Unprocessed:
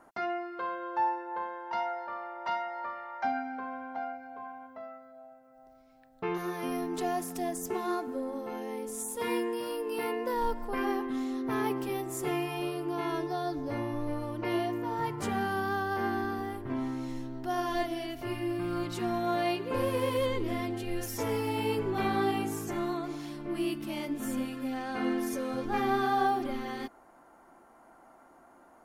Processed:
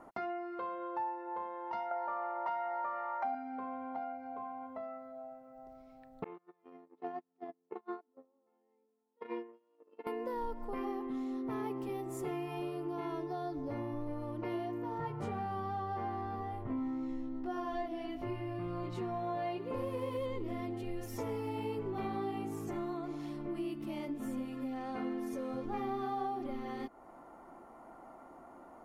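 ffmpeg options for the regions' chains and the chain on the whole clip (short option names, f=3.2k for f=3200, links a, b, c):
-filter_complex "[0:a]asettb=1/sr,asplit=3[a][b][c];[a]atrim=end=1.914[d];[b]atrim=start=1.91:end=3.35,asetpts=PTS-STARTPTS,afade=t=in:d=0.004:c=qsin,afade=t=out:st=1.436:d=0.004:c=qsin,equalizer=f=940:t=o:w=2.8:g=11.5,acompressor=threshold=-25dB:ratio=2:attack=3.2:release=140:knee=1:detection=peak[e];[c]atrim=start=3.346[f];[d][e]acrossfade=d=0.004:c1=hsin:c2=qsin[g];[g][f]acrossfade=d=0.004:c1=qsin:c2=hsin,asettb=1/sr,asplit=3[h][i][j];[h]atrim=end=6.244[k];[i]atrim=start=6.24:end=10.07,asetpts=PTS-STARTPTS,afade=t=in:d=0.004:c=qsin,afade=t=out:st=3.826:d=0.004:c=qsin,agate=range=-42dB:threshold=-30dB:ratio=16:release=100:detection=peak,highpass=260,lowpass=2.6k[l];[j]atrim=start=10.066[m];[k][l]acrossfade=d=0.004:c1=hsin:c2=qsin[n];[n][m]acrossfade=d=0.004:c1=qsin:c2=hsin,asettb=1/sr,asplit=3[o][p][q];[o]atrim=end=14.984[r];[p]atrim=start=14.98:end=19.58,asetpts=PTS-STARTPTS,afade=t=in:d=0.004:c=qsin,afade=t=out:st=4.596:d=0.004:c=qsin,aemphasis=mode=reproduction:type=cd,asplit=2[s][t];[t]adelay=19,volume=-3dB[u];[s][u]amix=inputs=2:normalize=0,atrim=end_sample=202860[v];[q]atrim=start=19.576[w];[r][v]acrossfade=d=0.004:c1=hsin:c2=qsin[x];[x][w]acrossfade=d=0.004:c1=qsin:c2=hsin,highshelf=f=2.2k:g=-10.5,bandreject=f=1.6k:w=8.4,acompressor=threshold=-46dB:ratio=2.5,volume=5dB"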